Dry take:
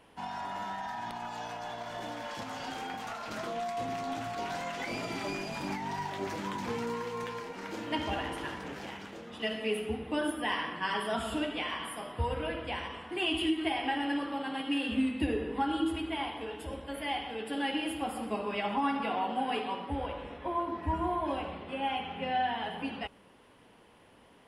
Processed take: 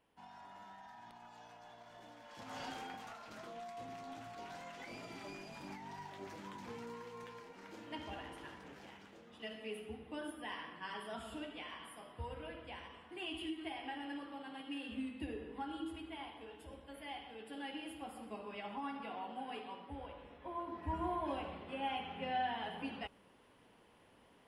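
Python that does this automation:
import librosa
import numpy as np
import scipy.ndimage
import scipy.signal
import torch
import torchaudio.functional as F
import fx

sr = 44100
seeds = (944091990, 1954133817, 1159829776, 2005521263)

y = fx.gain(x, sr, db=fx.line((2.27, -17.0), (2.59, -5.0), (3.28, -13.0), (20.33, -13.0), (21.05, -6.5)))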